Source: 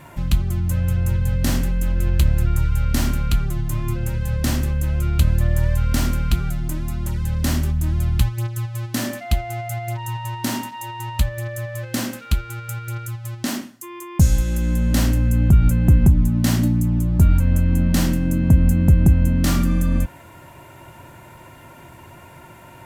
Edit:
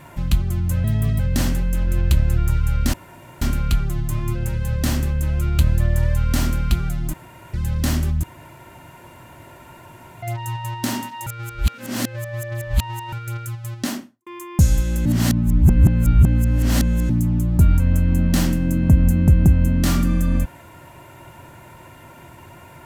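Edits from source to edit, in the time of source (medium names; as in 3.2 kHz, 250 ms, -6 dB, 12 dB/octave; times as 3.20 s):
0.84–1.28 s: speed 124%
3.02 s: insert room tone 0.48 s
6.74–7.14 s: room tone
7.84–9.83 s: room tone
10.87–12.73 s: reverse
13.44–13.87 s: studio fade out
14.66–16.70 s: reverse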